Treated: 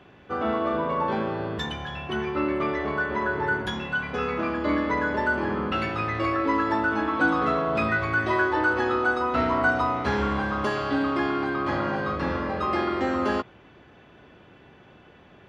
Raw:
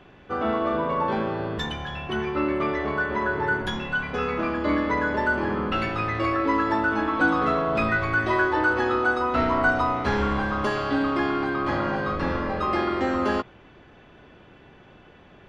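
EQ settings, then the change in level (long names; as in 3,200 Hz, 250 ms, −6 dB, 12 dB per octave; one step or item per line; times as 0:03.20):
high-pass filter 56 Hz
−1.0 dB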